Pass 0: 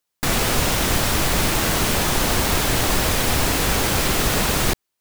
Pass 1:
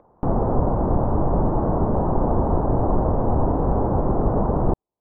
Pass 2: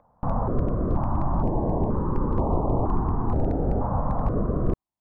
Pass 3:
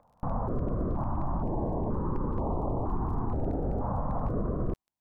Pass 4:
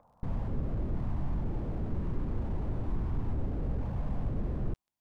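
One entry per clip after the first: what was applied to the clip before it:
Butterworth low-pass 970 Hz 36 dB per octave; upward compression, threshold −33 dBFS; level +2.5 dB
gain into a clipping stage and back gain 10 dB; dynamic equaliser 1,100 Hz, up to +6 dB, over −45 dBFS, Q 3.3; notch on a step sequencer 2.1 Hz 370–1,600 Hz; level −3 dB
brickwall limiter −19.5 dBFS, peak gain reduction 7 dB; surface crackle 13 per second −49 dBFS; level −2.5 dB
slew-rate limiting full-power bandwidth 4 Hz

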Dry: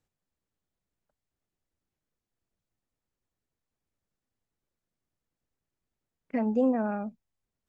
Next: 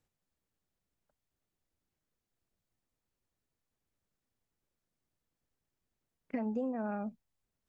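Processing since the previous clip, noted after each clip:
downward compressor 5 to 1, threshold −33 dBFS, peak gain reduction 11.5 dB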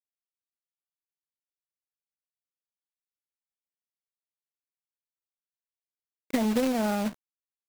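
log-companded quantiser 4 bits
level +9 dB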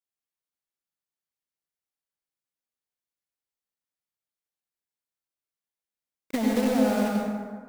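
dense smooth reverb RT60 1.8 s, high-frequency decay 0.45×, pre-delay 80 ms, DRR −1.5 dB
level −2 dB

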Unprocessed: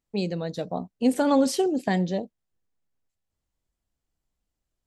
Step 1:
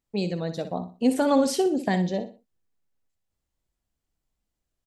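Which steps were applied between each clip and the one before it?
repeating echo 61 ms, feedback 30%, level −11 dB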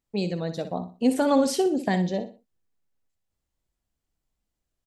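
no processing that can be heard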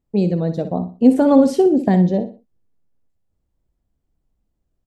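tilt shelving filter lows +8.5 dB
level +3 dB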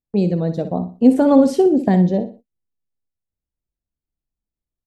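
noise gate −39 dBFS, range −16 dB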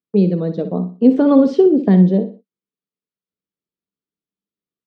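loudspeaker in its box 180–5,100 Hz, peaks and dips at 190 Hz +10 dB, 300 Hz +4 dB, 430 Hz +9 dB, 770 Hz −5 dB, 1,200 Hz +6 dB, 3,300 Hz +4 dB
level −2.5 dB

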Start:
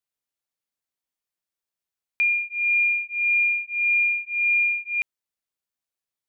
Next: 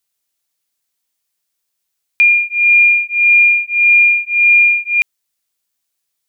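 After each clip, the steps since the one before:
high-shelf EQ 2,600 Hz +10 dB
level +7 dB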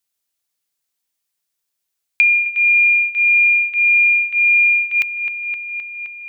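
noise gate with hold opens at −14 dBFS
delay with a low-pass on its return 260 ms, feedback 50%, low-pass 2,400 Hz, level −11.5 dB
multiband upward and downward compressor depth 70%
level −3.5 dB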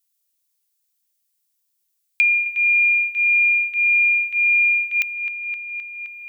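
spectral tilt +3.5 dB per octave
level −8 dB

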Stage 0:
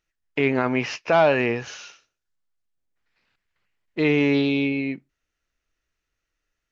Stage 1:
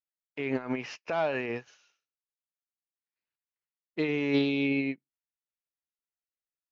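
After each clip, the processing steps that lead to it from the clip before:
high-pass filter 120 Hz 6 dB per octave
brickwall limiter −17 dBFS, peak gain reduction 10.5 dB
expander for the loud parts 2.5 to 1, over −41 dBFS
level +1.5 dB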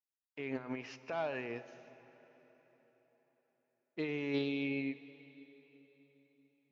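dense smooth reverb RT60 4.4 s, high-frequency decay 0.85×, DRR 13.5 dB
level −8.5 dB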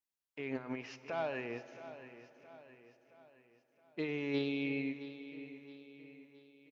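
repeating echo 669 ms, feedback 49%, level −14 dB

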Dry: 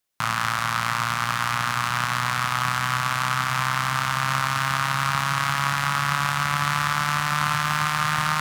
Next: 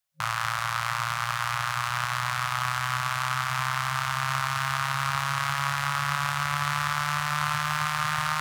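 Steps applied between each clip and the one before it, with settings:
brick-wall band-stop 160–540 Hz
level −4 dB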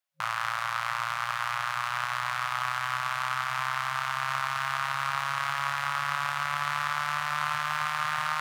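bass and treble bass −11 dB, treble −6 dB
level −1.5 dB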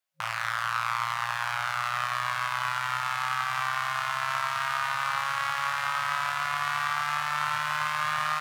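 double-tracking delay 18 ms −5.5 dB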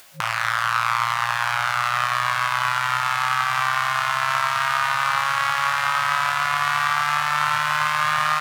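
upward compression, threshold −33 dBFS
level +7.5 dB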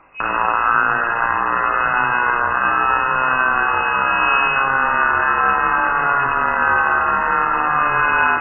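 convolution reverb RT60 1.1 s, pre-delay 3 ms, DRR 4.5 dB
voice inversion scrambler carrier 2,700 Hz

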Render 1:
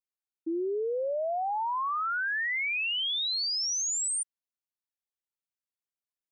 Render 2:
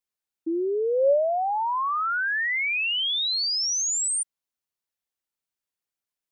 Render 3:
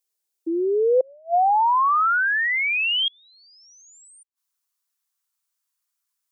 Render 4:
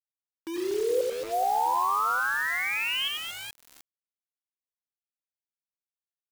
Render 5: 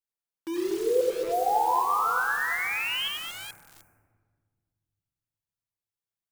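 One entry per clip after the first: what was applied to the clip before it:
dynamic equaliser 560 Hz, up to +8 dB, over −48 dBFS, Q 5.8; level +4.5 dB
bass and treble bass −12 dB, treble +11 dB; gate with flip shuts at −19 dBFS, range −35 dB; high-pass filter sweep 360 Hz → 1,100 Hz, 0:00.45–0:02.06
on a send: reverse bouncing-ball delay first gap 90 ms, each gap 1.5×, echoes 5; on the sum: bit reduction 5 bits; level −9 dB
on a send at −1.5 dB: Butterworth band-reject 3,600 Hz, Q 0.51 + convolution reverb RT60 1.7 s, pre-delay 6 ms; on the sum: level −1 dB

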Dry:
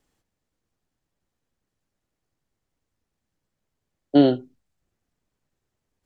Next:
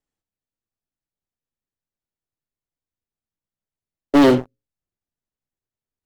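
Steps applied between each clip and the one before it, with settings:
mains-hum notches 60/120/180/240/300/360/420/480/540 Hz
leveller curve on the samples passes 5
level −4.5 dB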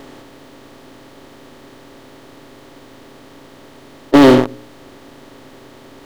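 compressor on every frequency bin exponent 0.4
level +3.5 dB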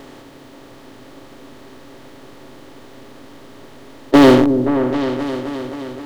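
echo whose low-pass opens from repeat to repeat 263 ms, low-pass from 400 Hz, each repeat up 2 octaves, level −6 dB
level −1 dB

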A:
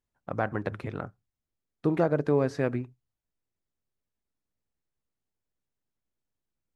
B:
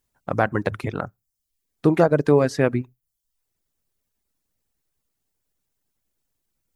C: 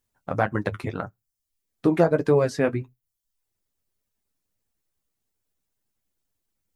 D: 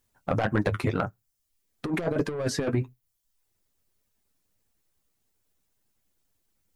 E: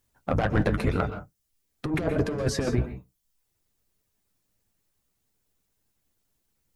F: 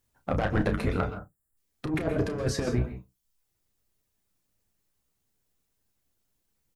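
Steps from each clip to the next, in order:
reverb reduction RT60 0.57 s; high-shelf EQ 5,800 Hz +9.5 dB; level +8.5 dB
flanger 1.7 Hz, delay 8.5 ms, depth 3.4 ms, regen −36%; level +1 dB
soft clipping −19 dBFS, distortion −9 dB; compressor whose output falls as the input rises −27 dBFS, ratio −0.5; level +2.5 dB
sub-octave generator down 1 octave, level −1 dB; convolution reverb, pre-delay 117 ms, DRR 9.5 dB
gain on a spectral selection 0:01.15–0:01.57, 2,000–7,000 Hz −17 dB; double-tracking delay 32 ms −9.5 dB; level −2.5 dB

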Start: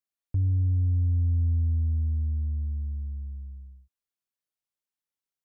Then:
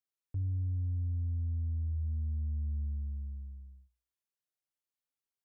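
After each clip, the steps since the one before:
brickwall limiter −27.5 dBFS, peak gain reduction 7 dB
dynamic equaliser 140 Hz, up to +5 dB, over −45 dBFS, Q 1.3
mains-hum notches 60/120/180/240 Hz
level −4.5 dB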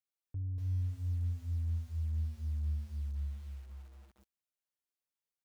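single-tap delay 240 ms −8 dB
feedback echo at a low word length 238 ms, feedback 35%, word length 9 bits, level −6 dB
level −4 dB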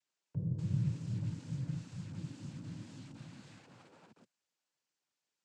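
cochlear-implant simulation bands 8
level +8 dB

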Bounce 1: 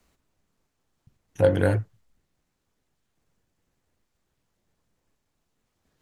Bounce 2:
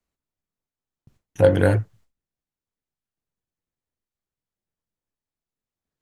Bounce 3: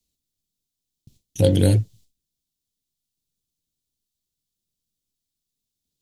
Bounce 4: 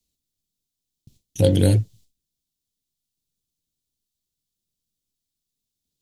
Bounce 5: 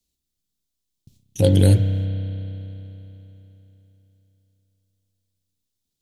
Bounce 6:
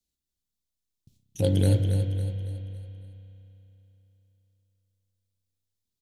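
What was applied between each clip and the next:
noise gate with hold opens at −54 dBFS; level +4 dB
drawn EQ curve 260 Hz 0 dB, 1,500 Hz −20 dB, 3,600 Hz +8 dB; level +3.5 dB
no processing that can be heard
spring reverb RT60 3.5 s, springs 31 ms, chirp 45 ms, DRR 6.5 dB
repeating echo 278 ms, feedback 44%, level −8 dB; level −7.5 dB

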